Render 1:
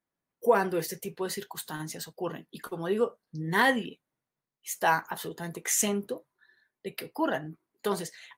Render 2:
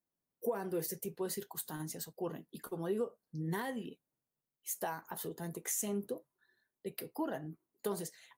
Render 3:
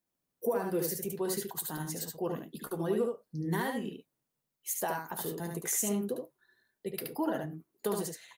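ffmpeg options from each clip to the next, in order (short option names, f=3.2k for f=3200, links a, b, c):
-af "lowshelf=f=320:g=-7,acompressor=threshold=-29dB:ratio=6,equalizer=f=2.3k:w=0.31:g=-14,volume=2.5dB"
-af "aecho=1:1:73:0.631,volume=4dB"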